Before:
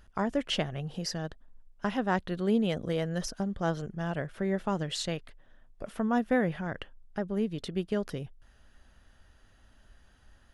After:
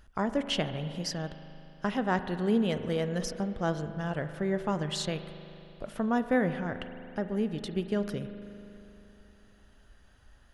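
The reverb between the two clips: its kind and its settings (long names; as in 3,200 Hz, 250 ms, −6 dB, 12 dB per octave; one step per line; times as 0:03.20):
spring reverb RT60 3.1 s, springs 39 ms, chirp 35 ms, DRR 10 dB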